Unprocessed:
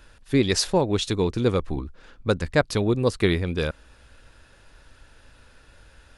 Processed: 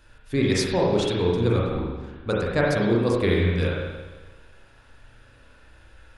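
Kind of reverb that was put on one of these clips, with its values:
spring reverb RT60 1.3 s, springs 34/43 ms, chirp 75 ms, DRR −4.5 dB
level −5 dB

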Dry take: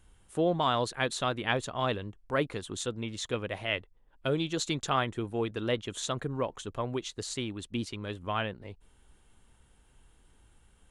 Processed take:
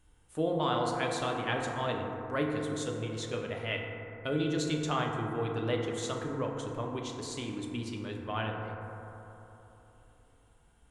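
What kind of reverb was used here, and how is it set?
feedback delay network reverb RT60 3.4 s, high-frequency decay 0.25×, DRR 0 dB
level −5 dB

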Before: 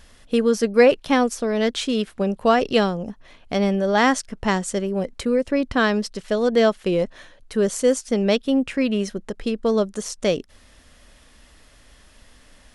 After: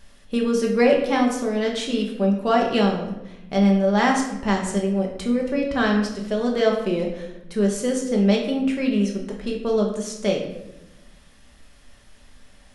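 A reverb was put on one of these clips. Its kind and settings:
rectangular room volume 320 cubic metres, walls mixed, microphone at 1.2 metres
level −5 dB

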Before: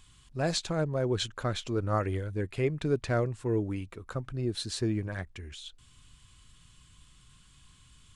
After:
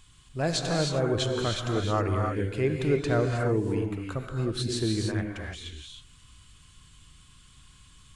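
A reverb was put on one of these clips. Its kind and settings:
reverb whose tail is shaped and stops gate 340 ms rising, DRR 1 dB
level +1.5 dB

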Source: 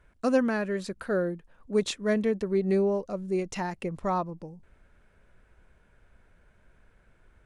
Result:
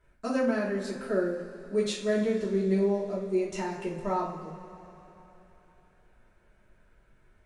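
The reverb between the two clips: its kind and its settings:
coupled-rooms reverb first 0.4 s, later 3.6 s, from −18 dB, DRR −6 dB
level −8.5 dB

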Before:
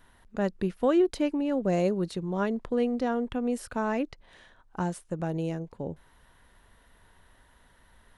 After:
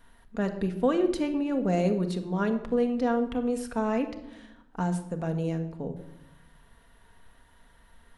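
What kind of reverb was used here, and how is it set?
rectangular room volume 3,100 cubic metres, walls furnished, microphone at 1.7 metres
level −1 dB

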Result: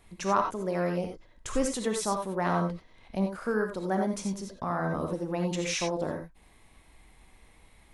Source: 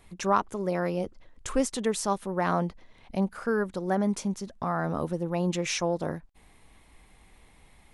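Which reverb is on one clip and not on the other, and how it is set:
reverb whose tail is shaped and stops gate 110 ms rising, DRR 3 dB
level −2.5 dB

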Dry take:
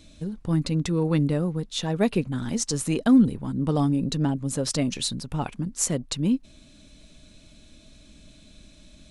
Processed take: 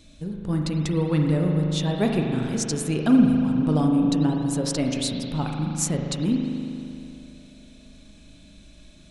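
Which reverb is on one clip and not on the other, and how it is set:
spring reverb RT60 2.8 s, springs 39 ms, chirp 75 ms, DRR 1 dB
level −1 dB

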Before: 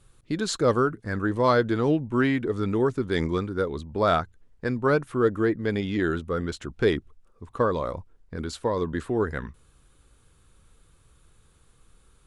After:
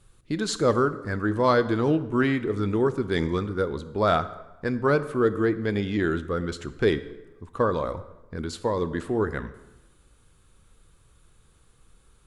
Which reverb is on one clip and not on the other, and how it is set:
dense smooth reverb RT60 1.1 s, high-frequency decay 0.7×, DRR 12.5 dB

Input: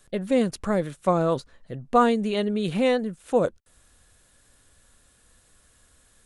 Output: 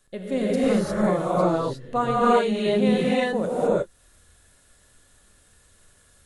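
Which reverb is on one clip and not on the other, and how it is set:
reverb whose tail is shaped and stops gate 380 ms rising, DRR −8 dB
level −6.5 dB

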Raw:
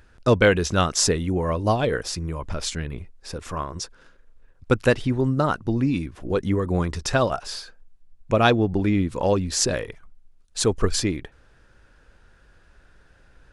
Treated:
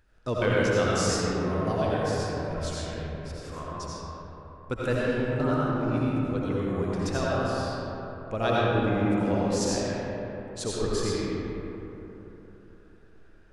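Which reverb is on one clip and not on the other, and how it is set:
comb and all-pass reverb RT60 3.7 s, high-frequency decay 0.4×, pre-delay 45 ms, DRR −7 dB
level −12.5 dB

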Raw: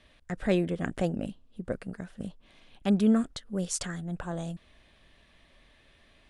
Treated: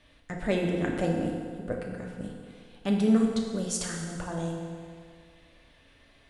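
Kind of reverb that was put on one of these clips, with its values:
feedback delay network reverb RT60 2.1 s, low-frequency decay 0.8×, high-frequency decay 0.75×, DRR −0.5 dB
level −1 dB

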